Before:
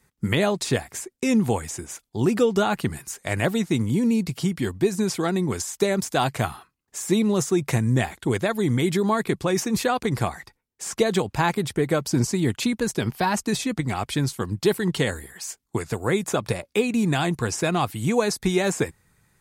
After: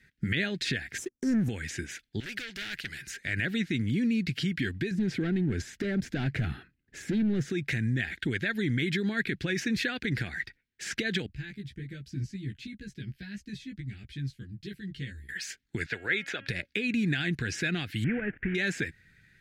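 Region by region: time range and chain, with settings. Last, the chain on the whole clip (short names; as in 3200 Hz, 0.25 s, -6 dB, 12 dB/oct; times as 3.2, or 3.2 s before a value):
0.98–1.49 Chebyshev band-stop 1200–5600 Hz, order 4 + sample leveller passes 2
2.2–3.02 bell 270 Hz -7.5 dB 1.3 oct + overloaded stage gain 24 dB + spectral compressor 2:1
4.91–7.5 hard clip -21.5 dBFS + tilt shelf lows +8 dB, about 1100 Hz + compressor 2.5:1, threshold -23 dBFS
11.26–15.29 passive tone stack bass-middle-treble 10-0-1 + doubler 15 ms -2.5 dB
15.86–16.48 three-band isolator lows -15 dB, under 440 Hz, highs -13 dB, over 5000 Hz + de-hum 273.4 Hz, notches 12
18.04–18.55 CVSD 16 kbps + LPF 2200 Hz 24 dB/oct + upward compressor, threshold -34 dBFS
whole clip: compressor, threshold -24 dBFS; limiter -20.5 dBFS; EQ curve 300 Hz 0 dB, 1100 Hz -20 dB, 1600 Hz +10 dB, 4100 Hz +3 dB, 8500 Hz -13 dB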